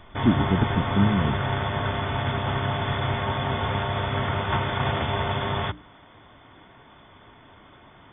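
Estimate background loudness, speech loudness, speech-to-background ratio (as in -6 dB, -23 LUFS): -26.5 LUFS, -25.5 LUFS, 1.0 dB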